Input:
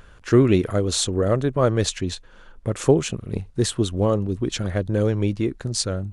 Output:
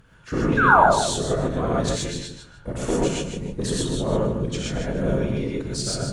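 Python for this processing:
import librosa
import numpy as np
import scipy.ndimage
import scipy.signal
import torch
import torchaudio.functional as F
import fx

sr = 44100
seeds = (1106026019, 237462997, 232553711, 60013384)

p1 = fx.rider(x, sr, range_db=10, speed_s=2.0)
p2 = x + F.gain(torch.from_numpy(p1), -2.0).numpy()
p3 = fx.whisperise(p2, sr, seeds[0])
p4 = fx.cheby_harmonics(p3, sr, harmonics=(5,), levels_db=(-19,), full_scale_db=3.0)
p5 = fx.spec_paint(p4, sr, seeds[1], shape='fall', start_s=0.57, length_s=0.25, low_hz=550.0, high_hz=1700.0, level_db=-3.0)
p6 = p5 + fx.echo_feedback(p5, sr, ms=152, feedback_pct=23, wet_db=-8.0, dry=0)
p7 = fx.rev_gated(p6, sr, seeds[2], gate_ms=150, shape='rising', drr_db=-4.5)
y = F.gain(torch.from_numpy(p7), -16.5).numpy()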